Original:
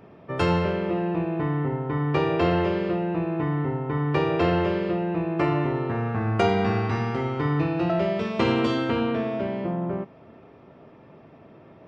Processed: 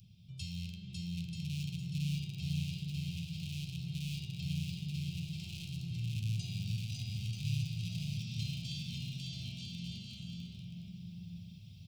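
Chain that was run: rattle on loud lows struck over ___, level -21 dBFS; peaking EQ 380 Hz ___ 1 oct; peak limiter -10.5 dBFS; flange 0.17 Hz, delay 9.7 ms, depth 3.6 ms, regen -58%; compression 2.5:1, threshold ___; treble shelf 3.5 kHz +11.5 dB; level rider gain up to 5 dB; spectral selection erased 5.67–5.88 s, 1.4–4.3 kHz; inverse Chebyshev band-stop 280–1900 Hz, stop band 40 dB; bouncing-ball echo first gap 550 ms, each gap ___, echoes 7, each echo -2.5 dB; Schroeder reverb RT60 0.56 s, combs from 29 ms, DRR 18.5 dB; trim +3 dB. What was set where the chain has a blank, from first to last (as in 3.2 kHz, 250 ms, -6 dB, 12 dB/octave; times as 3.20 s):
-24 dBFS, +4.5 dB, -46 dBFS, 0.7×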